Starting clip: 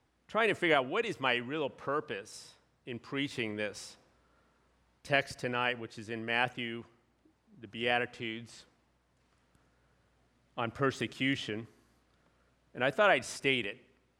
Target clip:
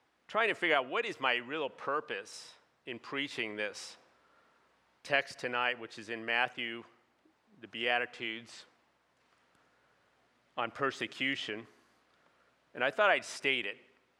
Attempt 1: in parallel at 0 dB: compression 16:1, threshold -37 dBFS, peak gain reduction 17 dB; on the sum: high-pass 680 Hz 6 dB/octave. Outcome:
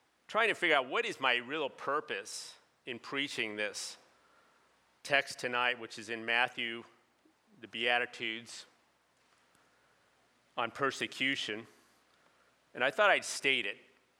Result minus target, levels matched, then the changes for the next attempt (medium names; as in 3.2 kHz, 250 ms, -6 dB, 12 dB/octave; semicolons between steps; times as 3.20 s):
8 kHz band +5.5 dB
add after high-pass: treble shelf 6.6 kHz -11.5 dB